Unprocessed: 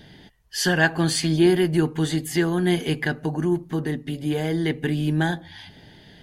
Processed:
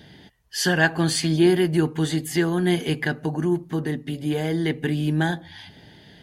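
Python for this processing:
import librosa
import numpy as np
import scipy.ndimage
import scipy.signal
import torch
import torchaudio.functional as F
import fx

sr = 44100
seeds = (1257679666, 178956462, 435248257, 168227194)

y = scipy.signal.sosfilt(scipy.signal.butter(2, 54.0, 'highpass', fs=sr, output='sos'), x)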